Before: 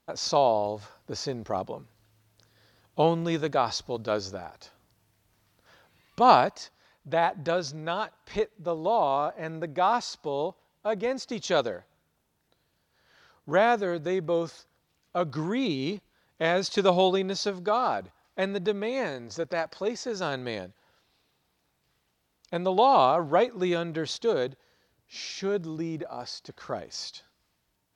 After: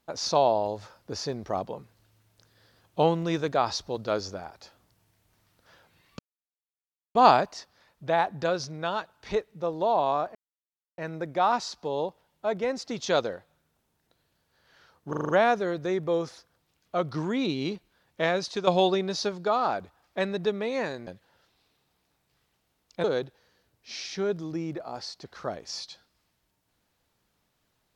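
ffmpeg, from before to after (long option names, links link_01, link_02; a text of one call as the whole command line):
ffmpeg -i in.wav -filter_complex "[0:a]asplit=11[link_01][link_02][link_03][link_04][link_05][link_06][link_07][link_08][link_09][link_10][link_11];[link_01]atrim=end=6.19,asetpts=PTS-STARTPTS,afade=type=out:start_time=6.186:duration=0.004:curve=hsin,apad=pad_dur=0.96[link_12];[link_02]atrim=start=6.19:end=9.39,asetpts=PTS-STARTPTS,afade=type=in:duration=0.004:curve=hsin,afade=type=out:start_time=3.196:duration=0.004:curve=hsin,apad=pad_dur=0.63[link_13];[link_03]atrim=start=9.39:end=13.542,asetpts=PTS-STARTPTS,afade=type=in:duration=0.004:curve=hsin[link_14];[link_04]atrim=start=13.498:end=13.542[link_15];[link_05]atrim=start=13.498:end=13.542[link_16];[link_06]atrim=start=13.498:end=13.542[link_17];[link_07]atrim=start=13.498:end=13.542[link_18];[link_08]atrim=start=13.498:end=16.88,asetpts=PTS-STARTPTS,afade=type=out:start_time=2.942:duration=0.44:silence=0.375837[link_19];[link_09]atrim=start=16.88:end=19.282,asetpts=PTS-STARTPTS,afade=type=in:duration=0.004:curve=hsin:silence=0.375837[link_20];[link_10]atrim=start=20.608:end=22.582[link_21];[link_11]atrim=start=24.288[link_22];[link_12][link_13][link_14]concat=n=3:v=0:a=1[link_23];[link_23][link_15]acrossfade=duration=0.004:curve1=hsin:curve2=hsin[link_24];[link_24][link_16]acrossfade=duration=0.004:curve1=hsin:curve2=hsin[link_25];[link_25][link_17]acrossfade=duration=0.004:curve1=hsin:curve2=hsin[link_26];[link_26][link_18]acrossfade=duration=0.004:curve1=hsin:curve2=hsin[link_27];[link_19][link_20]concat=n=2:v=0:a=1[link_28];[link_27][link_28]acrossfade=duration=0.004:curve1=hsin:curve2=hsin[link_29];[link_29][link_21]acrossfade=duration=0.004:curve1=hsin:curve2=hsin[link_30];[link_30][link_22]acrossfade=duration=0.004:curve1=hsin:curve2=hsin" out.wav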